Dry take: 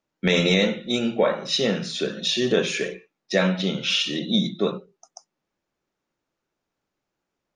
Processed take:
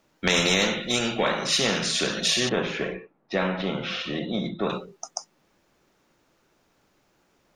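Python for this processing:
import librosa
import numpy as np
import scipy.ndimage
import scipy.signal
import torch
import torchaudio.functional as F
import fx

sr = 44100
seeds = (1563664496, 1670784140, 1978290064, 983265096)

y = fx.lowpass(x, sr, hz=1100.0, slope=12, at=(2.49, 4.7))
y = fx.spectral_comp(y, sr, ratio=2.0)
y = F.gain(torch.from_numpy(y), -1.0).numpy()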